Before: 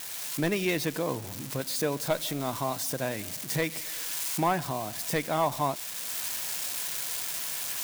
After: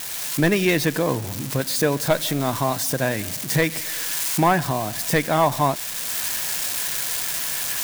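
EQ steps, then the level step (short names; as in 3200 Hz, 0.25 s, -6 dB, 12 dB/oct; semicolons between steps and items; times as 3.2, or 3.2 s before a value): low shelf 170 Hz +5 dB; dynamic EQ 1700 Hz, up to +5 dB, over -52 dBFS, Q 4.8; +7.5 dB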